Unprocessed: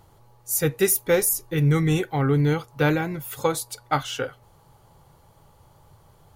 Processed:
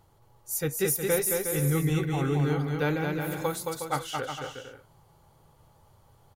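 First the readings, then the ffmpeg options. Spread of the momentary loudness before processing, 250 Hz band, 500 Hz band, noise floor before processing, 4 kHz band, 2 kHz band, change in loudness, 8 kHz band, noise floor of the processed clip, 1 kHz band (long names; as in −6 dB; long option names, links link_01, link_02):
10 LU, −5.0 dB, −5.0 dB, −56 dBFS, −5.0 dB, −4.5 dB, −5.0 dB, −5.0 dB, −61 dBFS, −5.0 dB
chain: -af "aecho=1:1:220|363|456|516.4|555.6:0.631|0.398|0.251|0.158|0.1,volume=-7dB"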